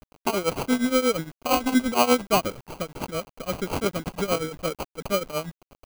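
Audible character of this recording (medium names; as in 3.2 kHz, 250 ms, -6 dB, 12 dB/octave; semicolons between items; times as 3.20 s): aliases and images of a low sample rate 1.8 kHz, jitter 0%; tremolo triangle 8.6 Hz, depth 90%; a quantiser's noise floor 8-bit, dither none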